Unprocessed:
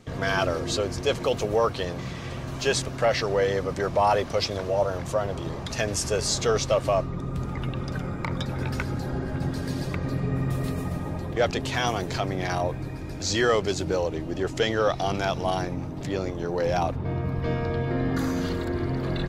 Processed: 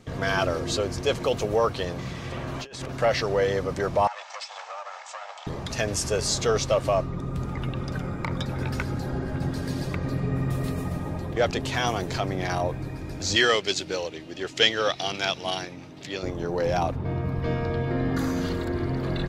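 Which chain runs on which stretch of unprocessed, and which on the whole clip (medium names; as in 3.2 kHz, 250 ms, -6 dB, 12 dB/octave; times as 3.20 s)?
2.32–2.92 s: tone controls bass -5 dB, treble -8 dB + compressor with a negative ratio -36 dBFS
4.07–5.47 s: comb filter that takes the minimum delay 2.3 ms + Chebyshev band-pass 620–7900 Hz, order 5 + compression 12:1, threshold -32 dBFS
13.36–16.23 s: frequency weighting D + upward expansion, over -31 dBFS
whole clip: none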